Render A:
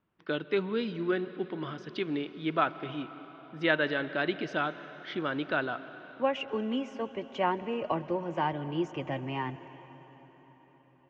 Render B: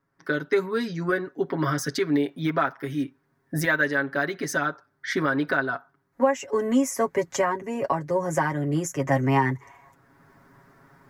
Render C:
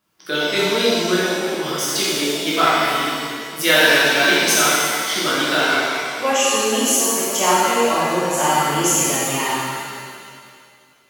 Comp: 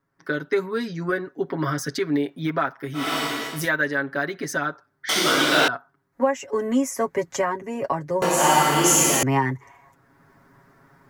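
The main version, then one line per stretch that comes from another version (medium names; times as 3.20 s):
B
3.05–3.58 s: from C, crossfade 0.24 s
5.09–5.68 s: from C
8.22–9.23 s: from C
not used: A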